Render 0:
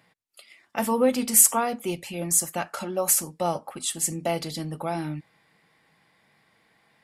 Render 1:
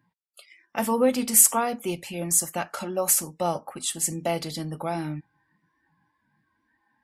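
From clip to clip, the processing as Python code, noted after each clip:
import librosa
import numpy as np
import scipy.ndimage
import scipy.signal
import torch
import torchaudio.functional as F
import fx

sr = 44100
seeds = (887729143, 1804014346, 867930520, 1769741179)

y = fx.noise_reduce_blind(x, sr, reduce_db=19)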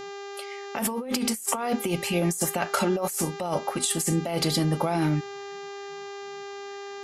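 y = fx.dmg_buzz(x, sr, base_hz=400.0, harmonics=18, level_db=-47.0, tilt_db=-6, odd_only=False)
y = fx.over_compress(y, sr, threshold_db=-31.0, ratio=-1.0)
y = y * librosa.db_to_amplitude(4.0)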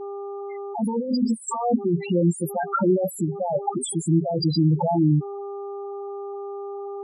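y = fx.spec_topn(x, sr, count=4)
y = y * librosa.db_to_amplitude(7.0)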